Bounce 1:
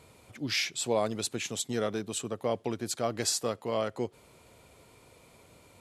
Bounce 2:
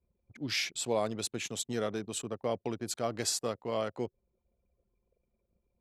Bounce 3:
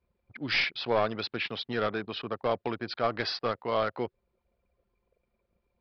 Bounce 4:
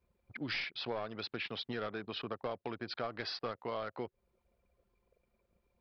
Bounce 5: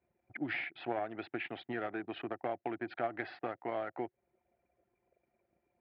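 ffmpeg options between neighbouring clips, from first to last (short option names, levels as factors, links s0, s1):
-af "anlmdn=0.0398,volume=0.75"
-af "equalizer=f=1500:t=o:w=2.3:g=11.5,aresample=11025,aeval=exprs='clip(val(0),-1,0.0631)':c=same,aresample=44100"
-af "acompressor=threshold=0.0141:ratio=4"
-af "aeval=exprs='0.0631*(cos(1*acos(clip(val(0)/0.0631,-1,1)))-cos(1*PI/2))+0.00794*(cos(3*acos(clip(val(0)/0.0631,-1,1)))-cos(3*PI/2))+0.000891*(cos(6*acos(clip(val(0)/0.0631,-1,1)))-cos(6*PI/2))':c=same,highpass=120,equalizer=f=200:t=q:w=4:g=-6,equalizer=f=330:t=q:w=4:g=8,equalizer=f=470:t=q:w=4:g=-7,equalizer=f=730:t=q:w=4:g=9,equalizer=f=1100:t=q:w=4:g=-8,equalizer=f=1900:t=q:w=4:g=4,lowpass=f=2500:w=0.5412,lowpass=f=2500:w=1.3066,volume=1.58"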